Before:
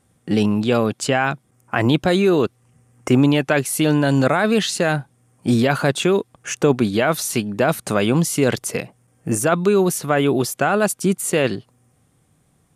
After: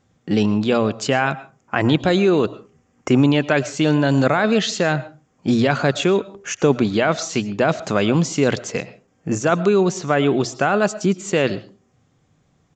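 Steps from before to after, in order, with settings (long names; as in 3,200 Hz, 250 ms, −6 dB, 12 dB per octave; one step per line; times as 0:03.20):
mains-hum notches 60/120 Hz
on a send at −16.5 dB: convolution reverb RT60 0.35 s, pre-delay 70 ms
on the sum: downsampling to 16,000 Hz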